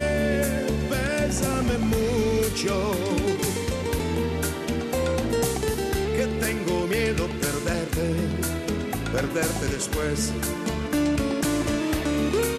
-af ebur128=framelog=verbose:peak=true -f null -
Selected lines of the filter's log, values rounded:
Integrated loudness:
  I:         -25.2 LUFS
  Threshold: -35.2 LUFS
Loudness range:
  LRA:         1.8 LU
  Threshold: -45.4 LUFS
  LRA low:   -26.1 LUFS
  LRA high:  -24.4 LUFS
True peak:
  Peak:      -13.9 dBFS